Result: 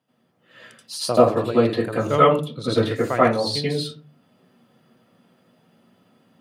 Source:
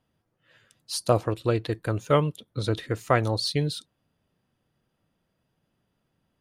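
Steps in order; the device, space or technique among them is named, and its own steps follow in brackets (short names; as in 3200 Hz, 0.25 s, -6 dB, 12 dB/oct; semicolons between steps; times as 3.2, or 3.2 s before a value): far laptop microphone (reverb RT60 0.35 s, pre-delay 78 ms, DRR -9.5 dB; HPF 130 Hz 24 dB/oct; AGC gain up to 7.5 dB); gain -1 dB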